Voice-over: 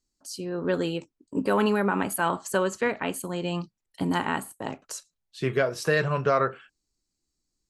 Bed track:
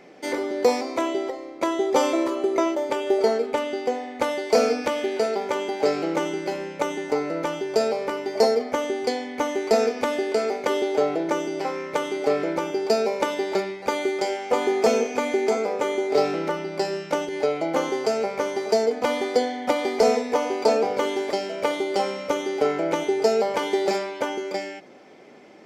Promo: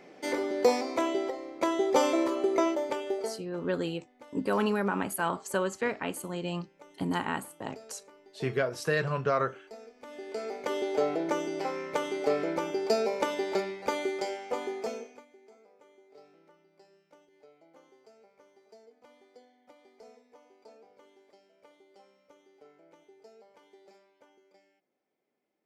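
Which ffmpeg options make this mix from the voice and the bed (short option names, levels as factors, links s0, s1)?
-filter_complex "[0:a]adelay=3000,volume=0.596[s0];[1:a]volume=8.41,afade=t=out:st=2.69:d=0.76:silence=0.0630957,afade=t=in:st=9.99:d=1.08:silence=0.0749894,afade=t=out:st=13.85:d=1.41:silence=0.0334965[s1];[s0][s1]amix=inputs=2:normalize=0"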